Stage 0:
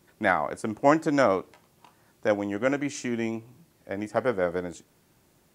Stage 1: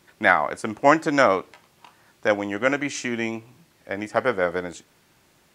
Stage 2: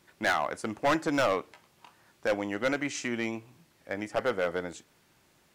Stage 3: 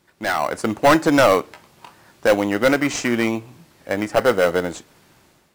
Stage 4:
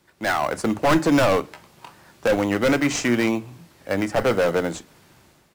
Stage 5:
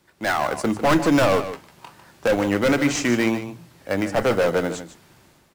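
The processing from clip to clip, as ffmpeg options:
ffmpeg -i in.wav -af "equalizer=frequency=2400:width=0.34:gain=8.5" out.wav
ffmpeg -i in.wav -af "asoftclip=type=hard:threshold=-15.5dB,volume=-5dB" out.wav
ffmpeg -i in.wav -filter_complex "[0:a]dynaudnorm=framelen=170:gausssize=5:maxgain=10dB,asplit=2[link_01][link_02];[link_02]acrusher=samples=13:mix=1:aa=0.000001,volume=-9dB[link_03];[link_01][link_03]amix=inputs=2:normalize=0" out.wav
ffmpeg -i in.wav -filter_complex "[0:a]acrossover=split=220[link_01][link_02];[link_01]asplit=2[link_03][link_04];[link_04]adelay=41,volume=-3dB[link_05];[link_03][link_05]amix=inputs=2:normalize=0[link_06];[link_02]asoftclip=type=hard:threshold=-15.5dB[link_07];[link_06][link_07]amix=inputs=2:normalize=0" out.wav
ffmpeg -i in.wav -af "aecho=1:1:149:0.266" out.wav

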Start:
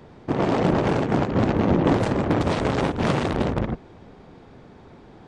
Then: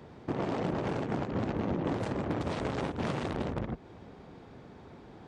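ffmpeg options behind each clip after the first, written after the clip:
ffmpeg -i in.wav -af "highpass=42,acompressor=threshold=-29dB:ratio=2.5,volume=-3.5dB" out.wav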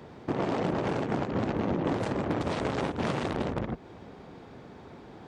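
ffmpeg -i in.wav -af "lowshelf=frequency=140:gain=-4.5,volume=4dB" out.wav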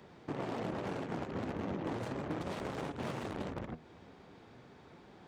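ffmpeg -i in.wav -filter_complex "[0:a]acrossover=split=1300[link_01][link_02];[link_01]flanger=delay=4.9:depth=8.1:regen=72:speed=0.39:shape=triangular[link_03];[link_02]asoftclip=type=tanh:threshold=-39dB[link_04];[link_03][link_04]amix=inputs=2:normalize=0,volume=-5dB" out.wav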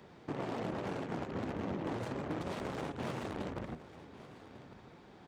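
ffmpeg -i in.wav -af "aecho=1:1:1148:0.158" out.wav

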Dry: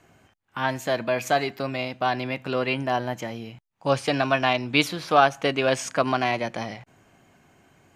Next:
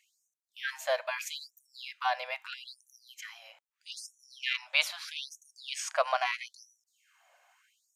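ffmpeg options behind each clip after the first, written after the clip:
ffmpeg -i in.wav -af "afftfilt=real='re*gte(b*sr/1024,480*pow(5800/480,0.5+0.5*sin(2*PI*0.78*pts/sr)))':imag='im*gte(b*sr/1024,480*pow(5800/480,0.5+0.5*sin(2*PI*0.78*pts/sr)))':win_size=1024:overlap=0.75,volume=-4dB" out.wav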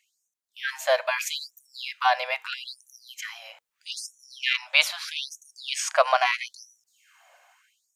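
ffmpeg -i in.wav -af "dynaudnorm=framelen=150:gausssize=9:maxgain=8.5dB,bandreject=frequency=60:width_type=h:width=6,bandreject=frequency=120:width_type=h:width=6,bandreject=frequency=180:width_type=h:width=6,bandreject=frequency=240:width_type=h:width=6,bandreject=frequency=300:width_type=h:width=6,bandreject=frequency=360:width_type=h:width=6,bandreject=frequency=420:width_type=h:width=6,bandreject=frequency=480:width_type=h:width=6" out.wav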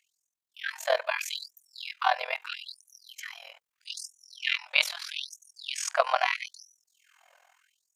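ffmpeg -i in.wav -af "tremolo=f=42:d=0.889" out.wav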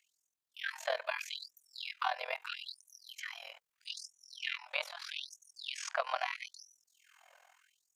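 ffmpeg -i in.wav -filter_complex "[0:a]acrossover=split=410|1300|5500[link_01][link_02][link_03][link_04];[link_01]acompressor=threshold=-48dB:ratio=4[link_05];[link_02]acompressor=threshold=-34dB:ratio=4[link_06];[link_03]acompressor=threshold=-37dB:ratio=4[link_07];[link_04]acompressor=threshold=-56dB:ratio=4[link_08];[link_05][link_06][link_07][link_08]amix=inputs=4:normalize=0,volume=-1.5dB" out.wav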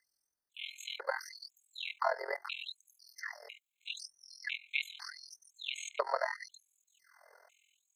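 ffmpeg -i in.wav -af "afreqshift=-94,afftfilt=real='re*gt(sin(2*PI*1*pts/sr)*(1-2*mod(floor(b*sr/1024/2100),2)),0)':imag='im*gt(sin(2*PI*1*pts/sr)*(1-2*mod(floor(b*sr/1024/2100),2)),0)':win_size=1024:overlap=0.75,volume=2.5dB" out.wav

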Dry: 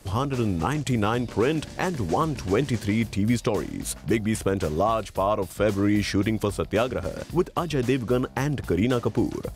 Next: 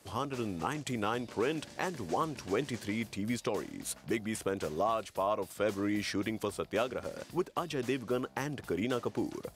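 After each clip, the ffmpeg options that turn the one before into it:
ffmpeg -i in.wav -af "highpass=frequency=300:poles=1,volume=-7dB" out.wav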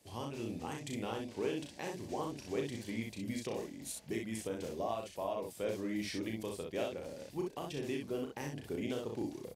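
ffmpeg -i in.wav -filter_complex "[0:a]equalizer=frequency=1300:width=2.1:gain=-11,asplit=2[link_01][link_02];[link_02]aecho=0:1:35|63:0.596|0.631[link_03];[link_01][link_03]amix=inputs=2:normalize=0,volume=-6.5dB" out.wav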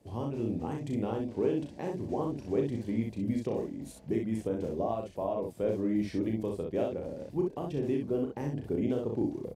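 ffmpeg -i in.wav -af "tiltshelf=frequency=1200:gain=9.5" out.wav

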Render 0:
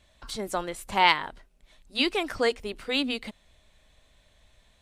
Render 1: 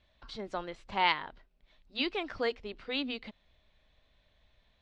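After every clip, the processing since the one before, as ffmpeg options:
ffmpeg -i in.wav -af "lowpass=frequency=4800:width=0.5412,lowpass=frequency=4800:width=1.3066,volume=-7dB" out.wav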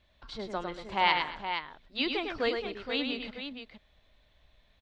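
ffmpeg -i in.wav -af "aecho=1:1:103|231|469:0.531|0.119|0.398,volume=1.5dB" out.wav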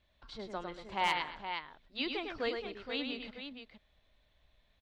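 ffmpeg -i in.wav -af "asoftclip=type=hard:threshold=-14.5dB,volume=-5.5dB" out.wav

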